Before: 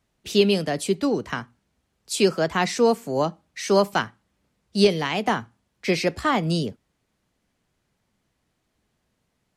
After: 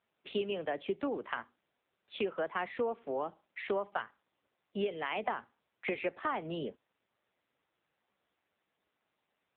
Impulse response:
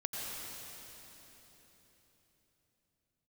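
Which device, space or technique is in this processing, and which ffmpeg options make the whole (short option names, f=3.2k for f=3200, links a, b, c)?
voicemail: -af "highpass=380,lowpass=2.8k,acompressor=threshold=-28dB:ratio=6,volume=-2dB" -ar 8000 -c:a libopencore_amrnb -b:a 6700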